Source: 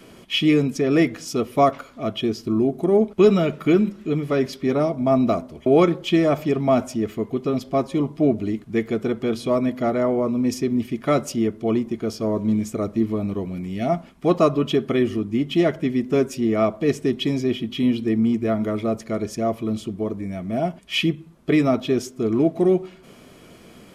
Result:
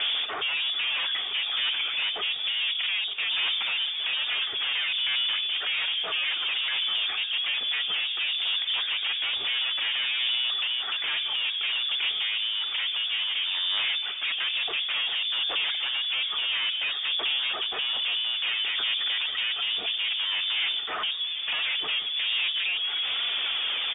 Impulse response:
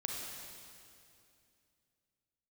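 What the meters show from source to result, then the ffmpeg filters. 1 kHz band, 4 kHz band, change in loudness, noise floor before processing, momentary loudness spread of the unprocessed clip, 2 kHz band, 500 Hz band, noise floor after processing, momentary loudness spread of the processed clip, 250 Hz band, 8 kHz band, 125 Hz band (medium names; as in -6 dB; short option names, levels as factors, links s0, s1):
-11.0 dB, +12.5 dB, -3.5 dB, -47 dBFS, 7 LU, +6.5 dB, -28.0 dB, -32 dBFS, 2 LU, under -35 dB, under -40 dB, under -35 dB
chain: -filter_complex "[0:a]highpass=110,tiltshelf=f=1300:g=5,acompressor=threshold=0.0562:ratio=16,alimiter=level_in=1.12:limit=0.0631:level=0:latency=1:release=13,volume=0.891,acrossover=split=540|1700[s0][s1][s2];[s0]acompressor=threshold=0.01:ratio=4[s3];[s1]acompressor=threshold=0.00398:ratio=4[s4];[s2]acompressor=threshold=0.00398:ratio=4[s5];[s3][s4][s5]amix=inputs=3:normalize=0,aresample=11025,aeval=exprs='0.0398*sin(PI/2*4.47*val(0)/0.0398)':c=same,aresample=44100,aphaser=in_gain=1:out_gain=1:delay=4:decay=0.37:speed=0.58:type=sinusoidal,asplit=2[s6][s7];[s7]highpass=f=720:p=1,volume=7.94,asoftclip=type=tanh:threshold=0.1[s8];[s6][s8]amix=inputs=2:normalize=0,lowpass=f=1700:p=1,volume=0.501,asplit=2[s9][s10];[s10]aecho=0:1:918|1836|2754|3672|4590:0.141|0.0763|0.0412|0.0222|0.012[s11];[s9][s11]amix=inputs=2:normalize=0,lowpass=f=3100:t=q:w=0.5098,lowpass=f=3100:t=q:w=0.6013,lowpass=f=3100:t=q:w=0.9,lowpass=f=3100:t=q:w=2.563,afreqshift=-3700"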